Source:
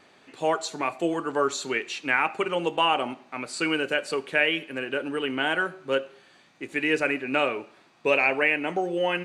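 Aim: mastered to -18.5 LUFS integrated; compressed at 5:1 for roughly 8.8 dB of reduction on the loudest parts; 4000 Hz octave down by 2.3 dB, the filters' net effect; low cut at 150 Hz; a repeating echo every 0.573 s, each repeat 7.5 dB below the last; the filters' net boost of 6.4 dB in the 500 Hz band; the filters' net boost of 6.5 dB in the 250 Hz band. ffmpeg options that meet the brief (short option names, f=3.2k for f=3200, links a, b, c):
-af "highpass=150,equalizer=f=250:t=o:g=6.5,equalizer=f=500:t=o:g=6,equalizer=f=4k:t=o:g=-4,acompressor=threshold=-23dB:ratio=5,aecho=1:1:573|1146|1719|2292|2865:0.422|0.177|0.0744|0.0312|0.0131,volume=9dB"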